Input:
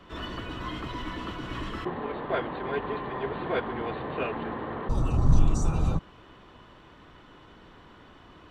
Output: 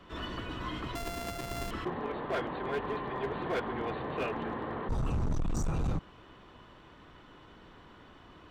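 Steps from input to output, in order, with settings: 0.95–1.71 s: sorted samples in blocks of 64 samples; overload inside the chain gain 24.5 dB; trim -2.5 dB

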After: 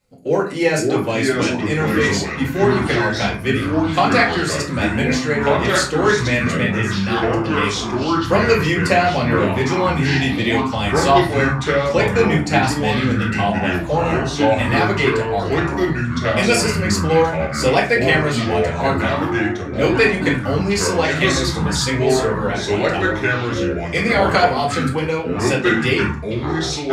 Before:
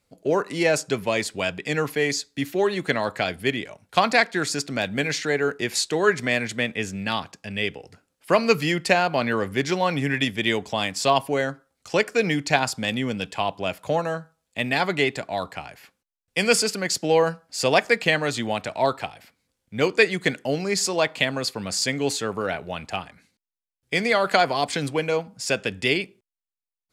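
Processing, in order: reverberation RT60 0.35 s, pre-delay 4 ms, DRR -5.5 dB; ever faster or slower copies 458 ms, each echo -4 st, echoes 3; trim -3 dB

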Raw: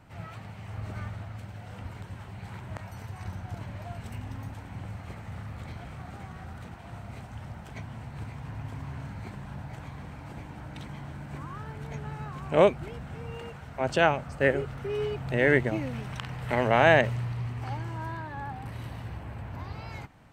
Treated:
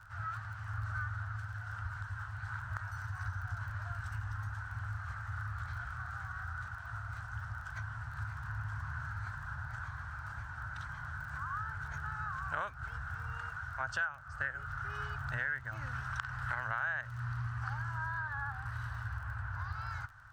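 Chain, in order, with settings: FFT filter 110 Hz 0 dB, 170 Hz -19 dB, 390 Hz -27 dB, 860 Hz -6 dB, 1.5 kHz +14 dB, 2.2 kHz -12 dB, 5.7 kHz -2 dB, 11 kHz -11 dB; compression 8:1, threshold -33 dBFS, peak gain reduction 21 dB; crackle 22 per s -47 dBFS

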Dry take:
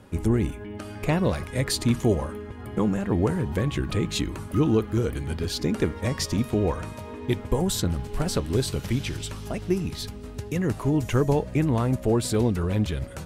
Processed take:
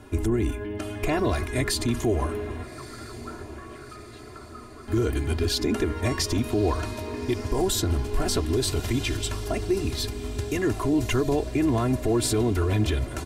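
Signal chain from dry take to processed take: comb 2.9 ms, depth 87%; peak limiter -17.5 dBFS, peak gain reduction 10 dB; 2.63–4.88 s: band-pass filter 1.3 kHz, Q 9.5; echo that smears into a reverb 1261 ms, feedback 60%, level -15 dB; trim +2 dB

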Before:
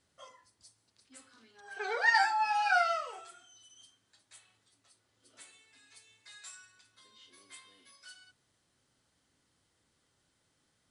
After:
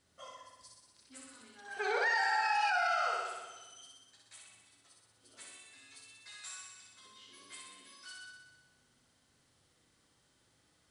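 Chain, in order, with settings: flutter echo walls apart 10.6 m, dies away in 1.2 s; peak limiter -24 dBFS, peak gain reduction 12.5 dB; trim +1 dB

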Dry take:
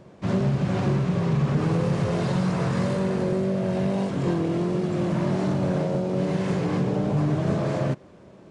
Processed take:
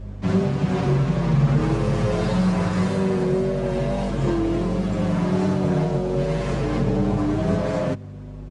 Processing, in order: hum 50 Hz, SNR 11 dB; endless flanger 7.4 ms -0.4 Hz; trim +5.5 dB

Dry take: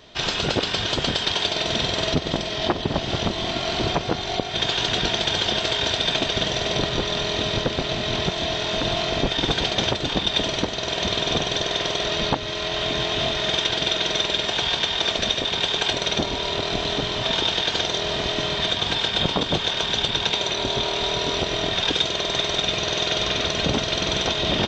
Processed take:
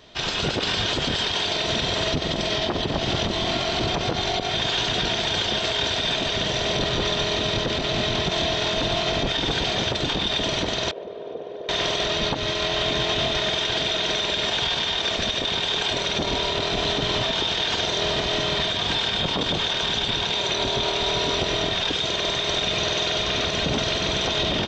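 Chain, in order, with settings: level rider; peak limiter -13 dBFS, peak gain reduction 11.5 dB; 10.91–11.69 s: band-pass filter 470 Hz, Q 3.7; trim -1.5 dB

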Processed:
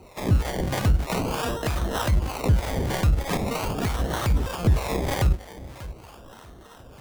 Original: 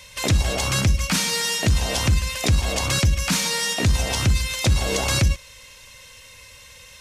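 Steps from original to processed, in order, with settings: echo whose repeats swap between lows and highs 589 ms, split 1.5 kHz, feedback 51%, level -14 dB; decimation with a swept rate 26×, swing 60% 0.42 Hz; harmonic tremolo 3.2 Hz, depth 70%, crossover 510 Hz

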